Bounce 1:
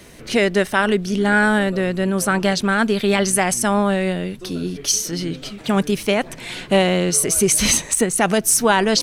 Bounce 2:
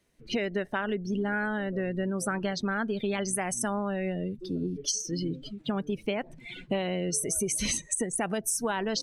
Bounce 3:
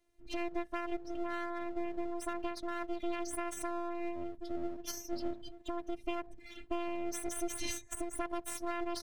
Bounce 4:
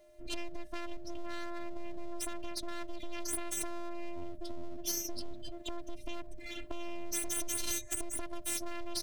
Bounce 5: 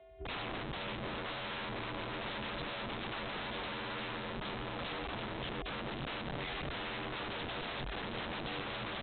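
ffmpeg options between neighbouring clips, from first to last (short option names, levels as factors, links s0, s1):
-af "afftdn=nr=24:nf=-26,acompressor=threshold=0.0794:ratio=6,volume=0.596"
-af "tiltshelf=f=730:g=4,afftfilt=real='hypot(re,im)*cos(PI*b)':imag='0':win_size=512:overlap=0.75,aeval=exprs='max(val(0),0)':c=same,volume=0.841"
-filter_complex "[0:a]acrossover=split=220|3000[s0][s1][s2];[s1]acompressor=threshold=0.00251:ratio=4[s3];[s0][s3][s2]amix=inputs=3:normalize=0,aeval=exprs='(tanh(79.4*val(0)+0.65)-tanh(0.65))/79.4':c=same,aeval=exprs='val(0)+0.000224*sin(2*PI*610*n/s)':c=same,volume=5.01"
-af "afreqshift=45,aresample=8000,aeval=exprs='(mod(89.1*val(0)+1,2)-1)/89.1':c=same,aresample=44100,volume=1.5"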